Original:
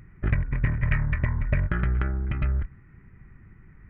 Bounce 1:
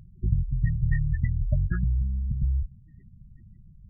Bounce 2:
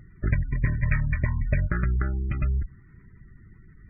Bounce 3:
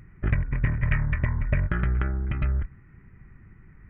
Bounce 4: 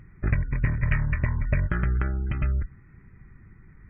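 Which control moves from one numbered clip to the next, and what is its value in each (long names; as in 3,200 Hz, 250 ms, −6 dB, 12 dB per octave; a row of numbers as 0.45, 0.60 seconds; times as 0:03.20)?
gate on every frequency bin, under each frame's peak: −15, −30, −60, −40 decibels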